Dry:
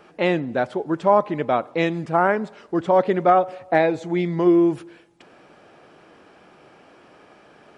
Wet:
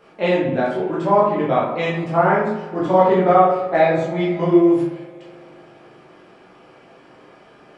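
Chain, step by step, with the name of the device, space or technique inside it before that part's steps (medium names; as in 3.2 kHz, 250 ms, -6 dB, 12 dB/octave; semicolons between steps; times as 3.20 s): 2.77–3.67 s: doubling 50 ms -6 dB; bathroom (reverberation RT60 0.75 s, pre-delay 12 ms, DRR -6.5 dB); spring tank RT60 3.3 s, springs 43 ms, chirp 45 ms, DRR 14.5 dB; trim -5 dB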